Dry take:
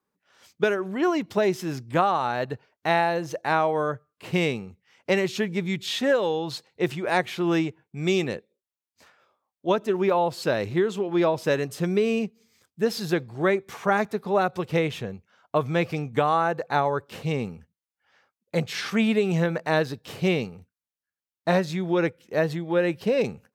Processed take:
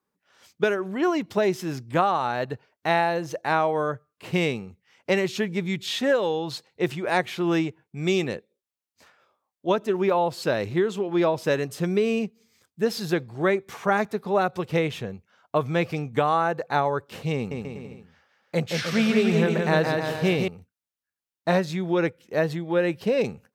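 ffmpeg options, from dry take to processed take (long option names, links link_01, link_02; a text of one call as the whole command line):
ffmpeg -i in.wav -filter_complex "[0:a]asettb=1/sr,asplit=3[link_01][link_02][link_03];[link_01]atrim=end=17.344[link_04];[link_02]atrim=start=17.34:end=20.48,asetpts=PTS-STARTPTS,afade=type=in:duration=0.004:curve=qsin,afade=type=out:start_time=3.136:duration=0.004:curve=qsin,aecho=1:1:170|306|414.8|501.8|571.5:0.631|0.398|0.251|0.158|0.1,atrim=end_sample=138474[link_05];[link_03]atrim=start=20.476[link_06];[link_04][link_05]acrossfade=duration=0.004:curve1=hsin:curve2=qsin[link_07];[link_07][link_06]acrossfade=duration=0.004:curve1=qsin:curve2=hsin" out.wav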